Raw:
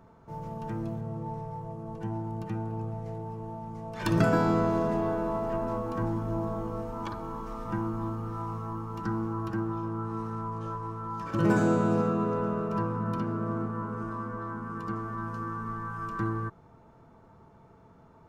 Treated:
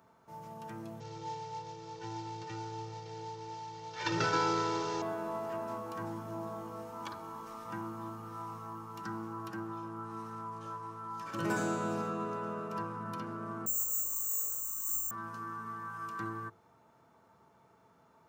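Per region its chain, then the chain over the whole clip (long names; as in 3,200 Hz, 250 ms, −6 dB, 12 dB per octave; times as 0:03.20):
0:01.00–0:05.02: variable-slope delta modulation 32 kbit/s + comb filter 2.2 ms, depth 95%
0:13.66–0:15.11: tuned comb filter 100 Hz, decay 0.2 s, harmonics odd, mix 100% + bad sample-rate conversion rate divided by 6×, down filtered, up zero stuff
whole clip: high-pass filter 72 Hz; spectral tilt +2.5 dB per octave; mains-hum notches 50/100/150/200/250/300/350/400/450/500 Hz; level −5 dB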